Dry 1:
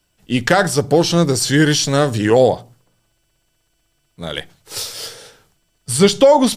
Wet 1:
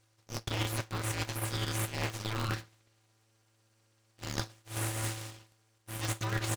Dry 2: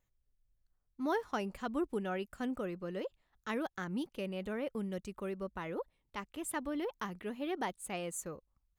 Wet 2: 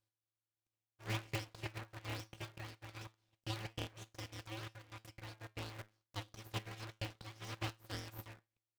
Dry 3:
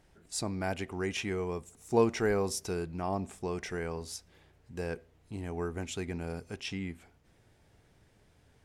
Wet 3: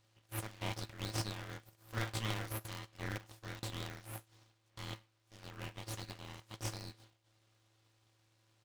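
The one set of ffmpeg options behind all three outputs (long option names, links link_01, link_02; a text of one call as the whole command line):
ffmpeg -i in.wav -af "aresample=16000,aresample=44100,highpass=1400,flanger=delay=8.4:depth=1.4:regen=-78:speed=0.24:shape=triangular,highshelf=frequency=3800:gain=-9,aeval=exprs='abs(val(0))':channel_layout=same,areverse,acompressor=threshold=-39dB:ratio=12,areverse,aeval=exprs='val(0)*sgn(sin(2*PI*110*n/s))':channel_layout=same,volume=9dB" out.wav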